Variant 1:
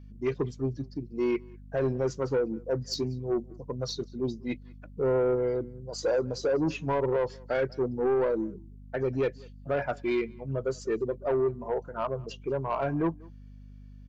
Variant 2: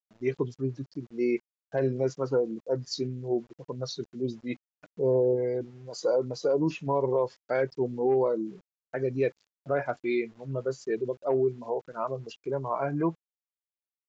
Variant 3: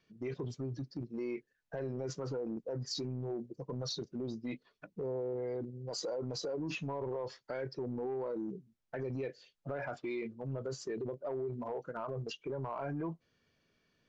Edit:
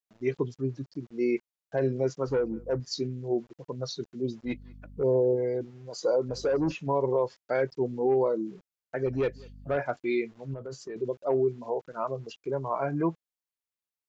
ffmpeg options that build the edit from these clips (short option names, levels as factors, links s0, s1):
-filter_complex "[0:a]asplit=4[s0][s1][s2][s3];[1:a]asplit=6[s4][s5][s6][s7][s8][s9];[s4]atrim=end=2.282[s10];[s0]atrim=start=2.278:end=2.802[s11];[s5]atrim=start=2.798:end=4.452[s12];[s1]atrim=start=4.448:end=5.032[s13];[s6]atrim=start=5.028:end=6.292[s14];[s2]atrim=start=6.288:end=6.722[s15];[s7]atrim=start=6.718:end=9.062[s16];[s3]atrim=start=9.058:end=9.772[s17];[s8]atrim=start=9.768:end=10.542[s18];[2:a]atrim=start=10.538:end=10.962[s19];[s9]atrim=start=10.958[s20];[s10][s11]acrossfade=d=0.004:c1=hsin:c2=hsin[s21];[s21][s12]acrossfade=d=0.004:c1=hsin:c2=hsin[s22];[s22][s13]acrossfade=d=0.004:c1=hsin:c2=hsin[s23];[s23][s14]acrossfade=d=0.004:c1=hsin:c2=hsin[s24];[s24][s15]acrossfade=d=0.004:c1=hsin:c2=hsin[s25];[s25][s16]acrossfade=d=0.004:c1=hsin:c2=hsin[s26];[s26][s17]acrossfade=d=0.004:c1=hsin:c2=hsin[s27];[s27][s18]acrossfade=d=0.004:c1=hsin:c2=hsin[s28];[s28][s19]acrossfade=d=0.004:c1=hsin:c2=hsin[s29];[s29][s20]acrossfade=d=0.004:c1=hsin:c2=hsin"